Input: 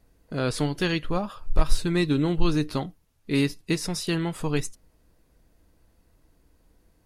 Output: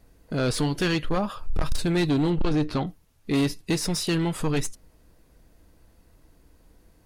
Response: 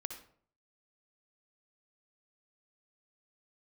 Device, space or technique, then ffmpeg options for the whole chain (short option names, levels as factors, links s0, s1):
saturation between pre-emphasis and de-emphasis: -filter_complex "[0:a]asettb=1/sr,asplit=3[s0][s1][s2];[s0]atrim=end=2.304[s3];[s1]atrim=start=2.3:end=2.87,asetpts=PTS-STARTPTS,afade=t=in:d=0.004:c=qsin,afade=t=out:st=0.566:d=0.004:c=qsin,aemphasis=mode=reproduction:type=50fm[s4];[s2]atrim=start=2.866[s5];[s3][s4]acrossfade=d=0.004:c1=hsin:c2=qsin[s6];[s6][s5]acrossfade=d=0.004:c1=qsin:c2=hsin,highshelf=f=5500:g=7,asoftclip=type=tanh:threshold=0.0708,highshelf=f=5500:g=-7,volume=1.78"